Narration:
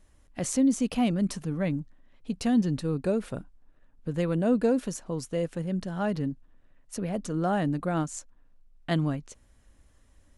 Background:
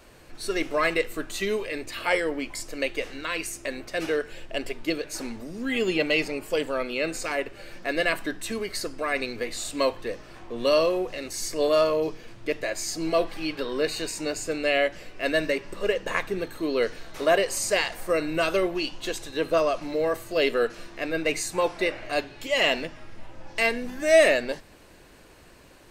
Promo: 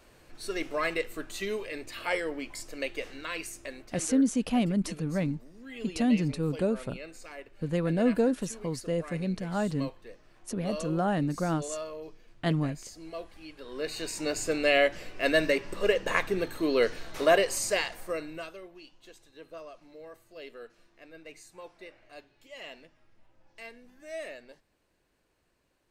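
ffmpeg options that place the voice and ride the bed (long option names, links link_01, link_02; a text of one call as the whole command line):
ffmpeg -i stem1.wav -i stem2.wav -filter_complex "[0:a]adelay=3550,volume=-1dB[link_01];[1:a]volume=10.5dB,afade=type=out:start_time=3.37:duration=0.78:silence=0.298538,afade=type=in:start_time=13.6:duration=0.85:silence=0.149624,afade=type=out:start_time=17.18:duration=1.37:silence=0.0794328[link_02];[link_01][link_02]amix=inputs=2:normalize=0" out.wav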